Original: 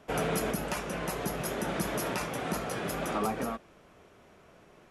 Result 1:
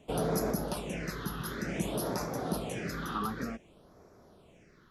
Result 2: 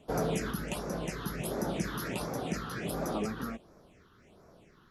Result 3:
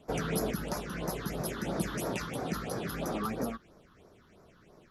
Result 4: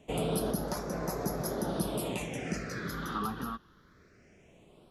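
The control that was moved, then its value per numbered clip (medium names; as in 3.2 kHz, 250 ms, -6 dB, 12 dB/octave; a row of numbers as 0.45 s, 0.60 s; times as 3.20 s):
phase shifter, rate: 0.55 Hz, 1.4 Hz, 3 Hz, 0.22 Hz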